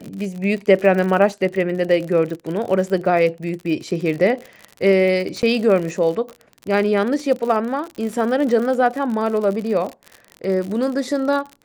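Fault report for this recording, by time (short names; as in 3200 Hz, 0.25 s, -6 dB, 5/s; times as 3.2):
crackle 58/s -26 dBFS
5.42–5.43 gap 9.4 ms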